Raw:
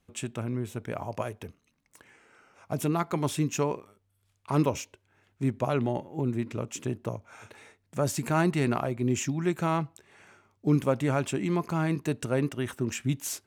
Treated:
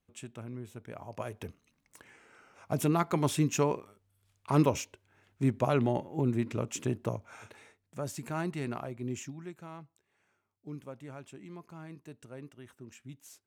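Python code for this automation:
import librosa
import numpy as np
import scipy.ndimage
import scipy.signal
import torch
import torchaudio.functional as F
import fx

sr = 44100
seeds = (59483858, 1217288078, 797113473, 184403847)

y = fx.gain(x, sr, db=fx.line((1.04, -10.0), (1.45, 0.0), (7.3, 0.0), (8.02, -9.5), (9.13, -9.5), (9.61, -19.0)))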